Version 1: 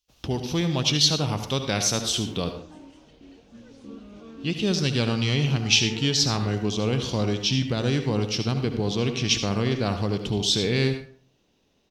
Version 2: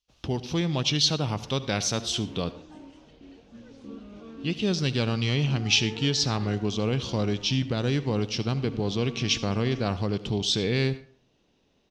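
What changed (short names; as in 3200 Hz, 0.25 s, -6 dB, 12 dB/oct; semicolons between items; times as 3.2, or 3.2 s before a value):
speech: send -8.5 dB; master: add air absorption 52 m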